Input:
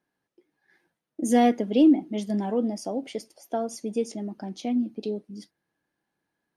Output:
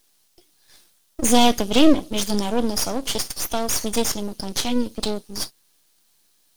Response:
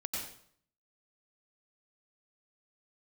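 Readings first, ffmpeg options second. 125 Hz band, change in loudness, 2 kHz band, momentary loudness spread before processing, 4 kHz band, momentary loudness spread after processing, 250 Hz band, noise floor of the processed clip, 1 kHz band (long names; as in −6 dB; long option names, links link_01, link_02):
can't be measured, +4.0 dB, +9.5 dB, 17 LU, +17.5 dB, 12 LU, +1.5 dB, −62 dBFS, +5.0 dB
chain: -filter_complex "[0:a]acrossover=split=3100[link_01][link_02];[link_02]acompressor=threshold=-50dB:ratio=4:attack=1:release=60[link_03];[link_01][link_03]amix=inputs=2:normalize=0,aexciter=amount=14.1:drive=5.2:freq=2900,aeval=exprs='max(val(0),0)':channel_layout=same,volume=7.5dB"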